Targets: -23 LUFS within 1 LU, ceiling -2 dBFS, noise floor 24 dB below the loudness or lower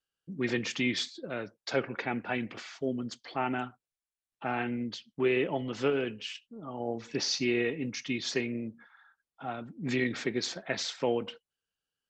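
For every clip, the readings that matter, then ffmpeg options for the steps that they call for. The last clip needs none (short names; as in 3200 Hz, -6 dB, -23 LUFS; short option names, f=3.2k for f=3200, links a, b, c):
loudness -33.0 LUFS; peak -15.5 dBFS; loudness target -23.0 LUFS
-> -af "volume=10dB"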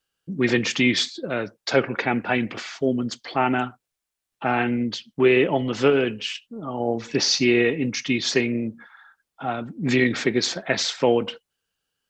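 loudness -23.0 LUFS; peak -5.5 dBFS; noise floor -83 dBFS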